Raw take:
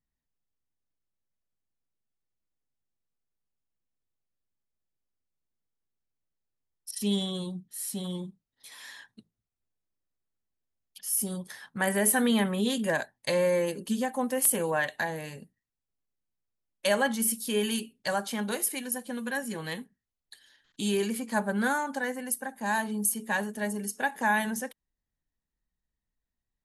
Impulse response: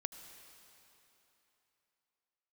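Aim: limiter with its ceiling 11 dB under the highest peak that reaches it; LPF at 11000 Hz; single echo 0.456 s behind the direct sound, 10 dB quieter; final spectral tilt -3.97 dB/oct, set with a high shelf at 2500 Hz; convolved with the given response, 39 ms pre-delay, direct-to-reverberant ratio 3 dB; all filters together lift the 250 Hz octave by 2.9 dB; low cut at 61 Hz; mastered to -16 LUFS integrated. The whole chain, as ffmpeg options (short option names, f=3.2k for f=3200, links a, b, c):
-filter_complex "[0:a]highpass=61,lowpass=11k,equalizer=f=250:t=o:g=3.5,highshelf=f=2.5k:g=6,alimiter=limit=-17dB:level=0:latency=1,aecho=1:1:456:0.316,asplit=2[a][b];[1:a]atrim=start_sample=2205,adelay=39[c];[b][c]afir=irnorm=-1:irlink=0,volume=-1.5dB[d];[a][d]amix=inputs=2:normalize=0,volume=10.5dB"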